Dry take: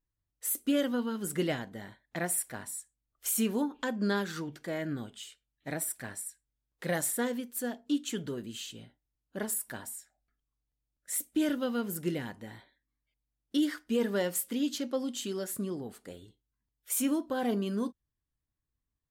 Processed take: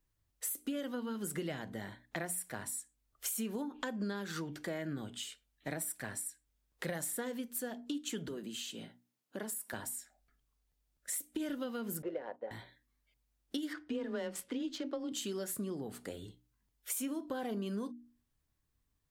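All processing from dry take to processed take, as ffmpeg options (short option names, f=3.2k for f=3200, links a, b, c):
-filter_complex "[0:a]asettb=1/sr,asplit=3[a][b][c];[a]atrim=end=8.284[d];[b]atrim=start=8.28:end=9.73,asetpts=PTS-STARTPTS,afade=t=in:d=0.004:c=qsin,afade=t=out:st=1.446:d=0.004:c=qsin,highpass=f=160:w=0.5412,highpass=f=160:w=1.3066,acompressor=threshold=-48dB:ratio=1.5:attack=3.2:release=140:knee=1:detection=peak[e];[c]atrim=start=9.726[f];[d][e]acrossfade=d=0.004:c1=hsin:c2=qsin[g];[g][f]acrossfade=d=0.004:c1=qsin:c2=hsin,asettb=1/sr,asplit=3[h][i][j];[h]atrim=end=12.024[k];[i]atrim=start=12.02:end=12.51,asetpts=PTS-STARTPTS,afade=t=in:d=0.004:c=qsin,afade=t=out:st=0.486:d=0.004:c=qsin,agate=range=-13dB:threshold=-51dB:ratio=16:release=100:detection=peak,highpass=f=550:t=q:w=3.8,adynamicsmooth=sensitivity=1:basefreq=1.3k[l];[j]atrim=start=12.506[m];[k][l]acrossfade=d=0.004:c1=hsin:c2=qsin[n];[n][m]acrossfade=d=0.004:c1=qsin:c2=hsin,asettb=1/sr,asplit=3[o][p][q];[o]atrim=end=13.734[r];[p]atrim=start=13.73:end=15.12,asetpts=PTS-STARTPTS,afade=t=in:d=0.004:c=qsin,afade=t=out:st=1.386:d=0.004:c=qsin,adynamicsmooth=sensitivity=4.5:basefreq=3.6k,afreqshift=19[s];[q]atrim=start=15.116[t];[r][s]acrossfade=d=0.004:c1=hsin:c2=qsin[u];[u][t]acrossfade=d=0.004:c1=qsin:c2=hsin,acrossover=split=150[v][w];[w]acompressor=threshold=-30dB:ratio=6[x];[v][x]amix=inputs=2:normalize=0,bandreject=f=60:t=h:w=6,bandreject=f=120:t=h:w=6,bandreject=f=180:t=h:w=6,bandreject=f=240:t=h:w=6,bandreject=f=300:t=h:w=6,acompressor=threshold=-48dB:ratio=2.5,volume=7dB"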